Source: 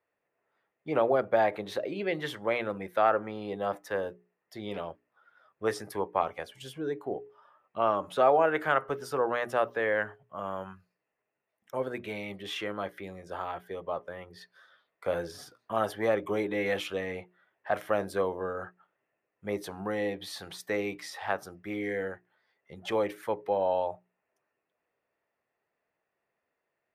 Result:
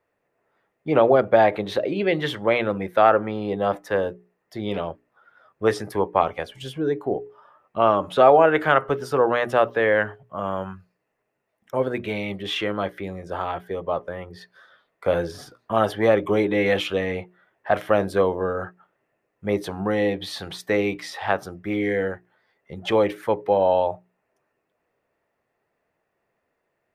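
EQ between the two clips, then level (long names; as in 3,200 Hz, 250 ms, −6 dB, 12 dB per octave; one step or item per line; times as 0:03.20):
dynamic equaliser 3,300 Hz, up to +5 dB, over −49 dBFS, Q 1.3
spectral tilt −1.5 dB per octave
+7.5 dB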